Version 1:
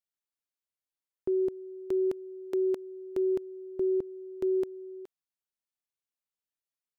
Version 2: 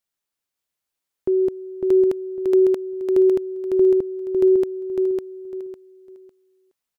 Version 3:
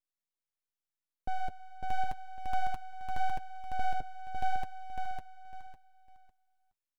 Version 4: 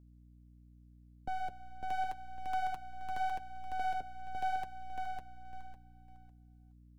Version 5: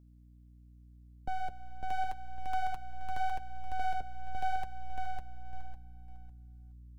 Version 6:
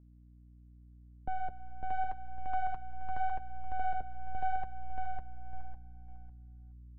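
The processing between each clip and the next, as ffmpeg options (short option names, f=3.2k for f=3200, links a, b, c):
-af "aecho=1:1:553|1106|1659:0.631|0.158|0.0394,volume=8.5dB"
-af "aeval=exprs='abs(val(0))':c=same,flanger=delay=3.6:depth=5.7:regen=-41:speed=0.82:shape=sinusoidal,volume=-7.5dB"
-filter_complex "[0:a]acrossover=split=240|680[a][b][c];[a]acompressor=threshold=-39dB:ratio=6[d];[d][b][c]amix=inputs=3:normalize=0,aeval=exprs='val(0)+0.00158*(sin(2*PI*60*n/s)+sin(2*PI*2*60*n/s)/2+sin(2*PI*3*60*n/s)/3+sin(2*PI*4*60*n/s)/4+sin(2*PI*5*60*n/s)/5)':c=same,volume=-1.5dB"
-af "asubboost=boost=2.5:cutoff=130,volume=1dB"
-af "lowpass=1.7k"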